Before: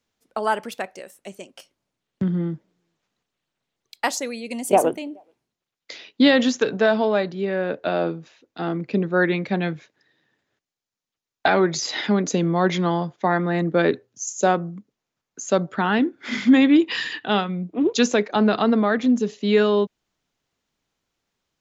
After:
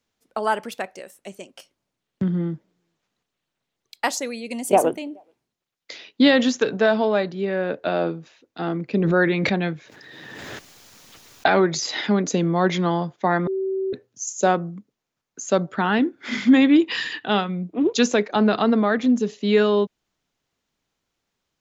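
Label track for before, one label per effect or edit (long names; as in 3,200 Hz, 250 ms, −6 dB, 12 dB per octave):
8.990000	11.840000	background raised ahead of every attack at most 21 dB per second
13.470000	13.930000	beep over 383 Hz −21.5 dBFS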